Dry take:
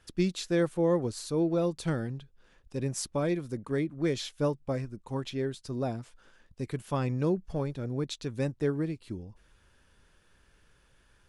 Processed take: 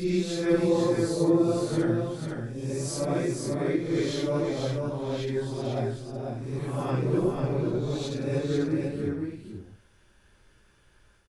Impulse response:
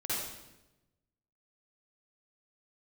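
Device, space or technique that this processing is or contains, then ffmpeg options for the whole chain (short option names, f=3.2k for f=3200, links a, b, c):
reverse reverb: -filter_complex "[0:a]areverse[a];[1:a]atrim=start_sample=2205[b];[a][b]afir=irnorm=-1:irlink=0,areverse,aecho=1:1:492:0.596,volume=-3.5dB"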